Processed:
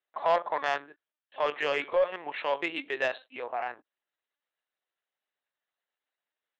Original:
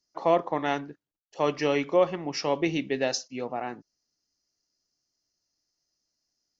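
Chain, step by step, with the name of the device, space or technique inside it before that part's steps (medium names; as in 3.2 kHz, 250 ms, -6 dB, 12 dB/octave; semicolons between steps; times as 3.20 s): talking toy (LPC vocoder at 8 kHz pitch kept; high-pass 700 Hz 12 dB/octave; peaking EQ 1.7 kHz +4.5 dB 0.21 oct; saturation -19 dBFS, distortion -17 dB); trim +3.5 dB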